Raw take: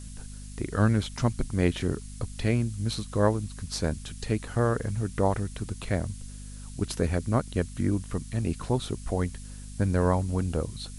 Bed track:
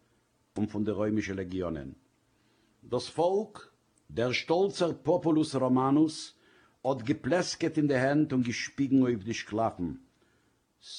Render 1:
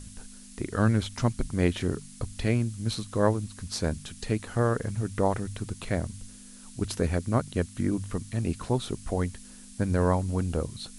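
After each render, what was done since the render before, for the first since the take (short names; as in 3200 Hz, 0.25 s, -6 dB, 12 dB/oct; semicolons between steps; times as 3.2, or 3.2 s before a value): de-hum 50 Hz, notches 3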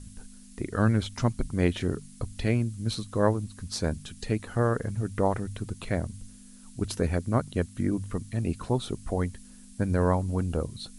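denoiser 6 dB, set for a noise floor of -48 dBFS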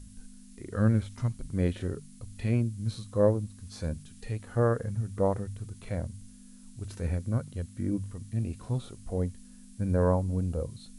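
dynamic EQ 520 Hz, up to +5 dB, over -44 dBFS, Q 5.2; harmonic-percussive split percussive -16 dB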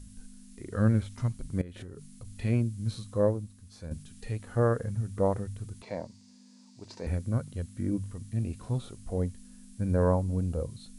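1.61–2.25 compressor 10:1, threshold -38 dBFS; 3.09–3.91 fade out quadratic, to -8.5 dB; 5.82–7.07 speaker cabinet 230–6800 Hz, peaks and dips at 620 Hz +3 dB, 920 Hz +10 dB, 1400 Hz -9 dB, 3100 Hz -5 dB, 4700 Hz +8 dB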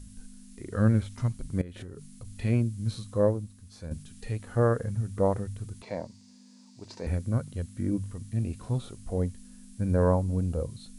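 gain +1.5 dB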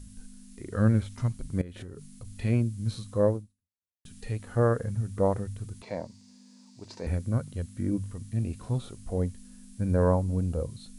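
3.36–4.05 fade out exponential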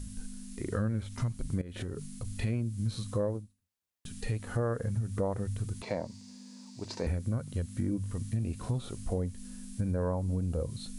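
in parallel at -2 dB: limiter -22 dBFS, peak gain reduction 11 dB; on the sum: compressor 4:1, threshold -29 dBFS, peak gain reduction 12.5 dB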